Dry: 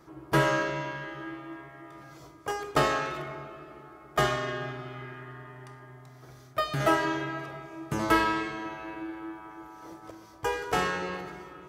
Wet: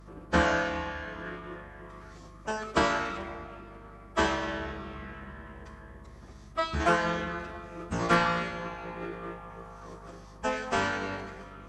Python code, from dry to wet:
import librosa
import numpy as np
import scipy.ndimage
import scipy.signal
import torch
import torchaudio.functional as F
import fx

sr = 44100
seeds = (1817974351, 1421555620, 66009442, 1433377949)

y = fx.pitch_keep_formants(x, sr, semitones=-11.0)
y = fx.add_hum(y, sr, base_hz=50, snr_db=19)